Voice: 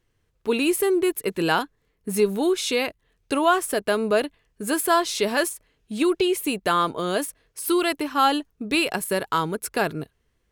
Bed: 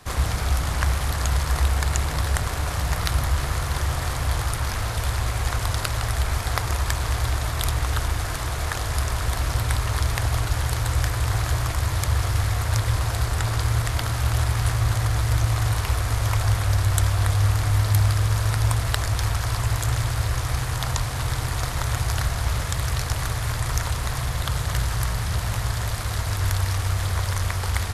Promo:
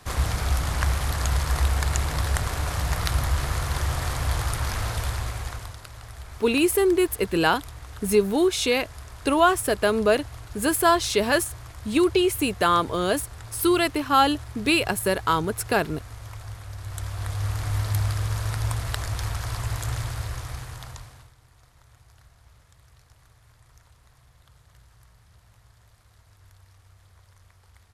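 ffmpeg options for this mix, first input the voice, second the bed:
-filter_complex "[0:a]adelay=5950,volume=1dB[a];[1:a]volume=10dB,afade=t=out:st=4.89:d=0.88:silence=0.16788,afade=t=in:st=16.76:d=1:silence=0.266073,afade=t=out:st=19.97:d=1.35:silence=0.0530884[b];[a][b]amix=inputs=2:normalize=0"

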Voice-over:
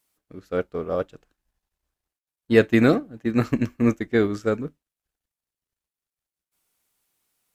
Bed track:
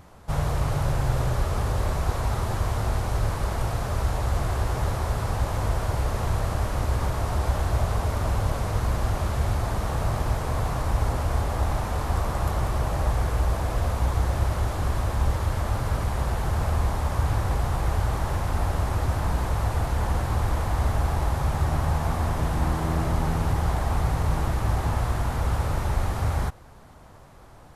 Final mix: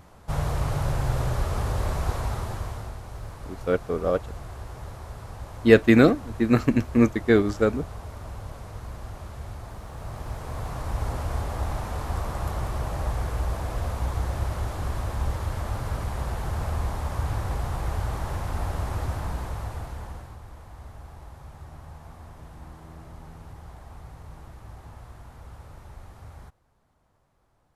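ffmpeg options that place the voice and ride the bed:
-filter_complex "[0:a]adelay=3150,volume=1.5dB[a];[1:a]volume=7.5dB,afade=t=out:st=2.1:d=0.86:silence=0.266073,afade=t=in:st=9.91:d=1.24:silence=0.354813,afade=t=out:st=19.01:d=1.38:silence=0.16788[b];[a][b]amix=inputs=2:normalize=0"

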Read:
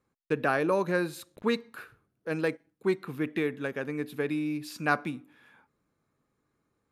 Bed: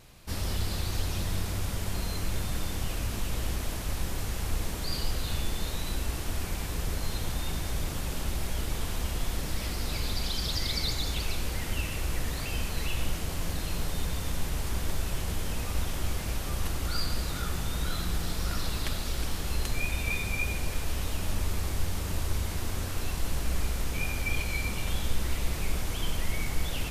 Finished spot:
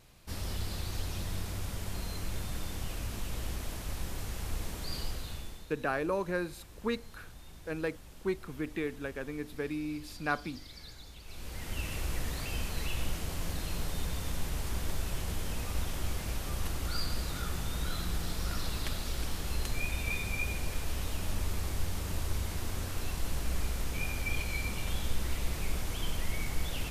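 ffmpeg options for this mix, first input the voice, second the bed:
-filter_complex "[0:a]adelay=5400,volume=-5.5dB[a];[1:a]volume=10dB,afade=t=out:st=5:d=0.67:silence=0.211349,afade=t=in:st=11.24:d=0.69:silence=0.16788[b];[a][b]amix=inputs=2:normalize=0"

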